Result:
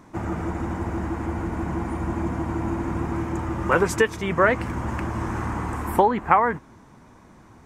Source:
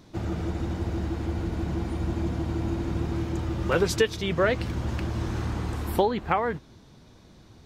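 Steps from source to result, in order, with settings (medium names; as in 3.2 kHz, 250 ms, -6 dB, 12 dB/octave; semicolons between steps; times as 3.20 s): graphic EQ 250/1000/2000/4000/8000 Hz +5/+11/+7/-12/+7 dB; trim -1 dB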